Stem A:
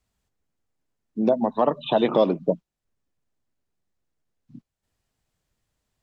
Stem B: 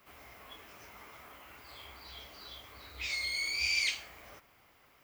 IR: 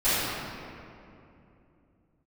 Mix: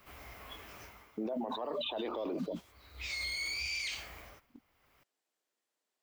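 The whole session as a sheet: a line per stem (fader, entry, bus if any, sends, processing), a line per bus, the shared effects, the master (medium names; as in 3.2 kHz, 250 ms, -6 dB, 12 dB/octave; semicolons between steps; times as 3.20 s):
-16.5 dB, 0.00 s, no send, high-pass 300 Hz 24 dB/octave; gate -45 dBFS, range -30 dB; level flattener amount 100%
+2.0 dB, 0.00 s, no send, bass shelf 81 Hz +10 dB; auto duck -15 dB, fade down 0.35 s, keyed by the first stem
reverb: none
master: peak limiter -29 dBFS, peak gain reduction 11.5 dB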